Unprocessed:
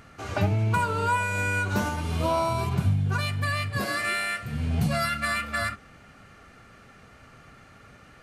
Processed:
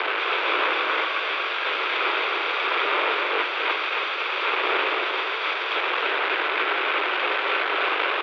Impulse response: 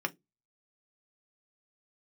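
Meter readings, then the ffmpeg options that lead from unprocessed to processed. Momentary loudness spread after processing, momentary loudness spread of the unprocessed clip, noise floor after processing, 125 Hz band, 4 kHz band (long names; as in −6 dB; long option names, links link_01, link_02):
3 LU, 4 LU, −27 dBFS, below −40 dB, +11.5 dB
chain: -filter_complex "[0:a]equalizer=frequency=490:width=1.8:gain=4.5,aresample=11025,aeval=exprs='0.282*sin(PI/2*3.55*val(0)/0.282)':channel_layout=same,aresample=44100,alimiter=limit=-19dB:level=0:latency=1:release=18,aeval=exprs='val(0)+0.0141*(sin(2*PI*50*n/s)+sin(2*PI*2*50*n/s)/2+sin(2*PI*3*50*n/s)/3+sin(2*PI*4*50*n/s)/4+sin(2*PI*5*50*n/s)/5)':channel_layout=same,aeval=exprs='(mod(25.1*val(0)+1,2)-1)/25.1':channel_layout=same,aecho=1:1:0.9:0.57,acrusher=bits=4:mix=0:aa=0.000001,aecho=1:1:273:0.668,asplit=2[link_01][link_02];[1:a]atrim=start_sample=2205,adelay=46[link_03];[link_02][link_03]afir=irnorm=-1:irlink=0,volume=-16dB[link_04];[link_01][link_04]amix=inputs=2:normalize=0,highpass=frequency=220:width_type=q:width=0.5412,highpass=frequency=220:width_type=q:width=1.307,lowpass=frequency=3100:width_type=q:width=0.5176,lowpass=frequency=3100:width_type=q:width=0.7071,lowpass=frequency=3100:width_type=q:width=1.932,afreqshift=160,volume=8.5dB"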